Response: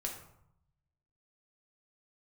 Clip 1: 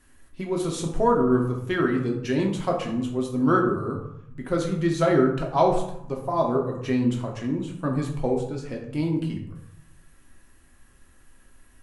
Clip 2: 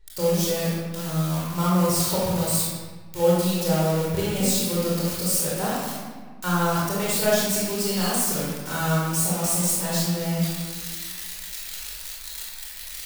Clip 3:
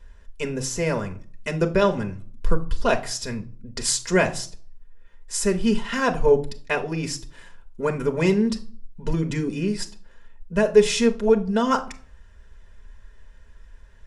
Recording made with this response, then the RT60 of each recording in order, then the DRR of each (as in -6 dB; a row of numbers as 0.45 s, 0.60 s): 1; 0.75 s, 1.5 s, 0.45 s; -0.5 dB, -7.0 dB, 5.0 dB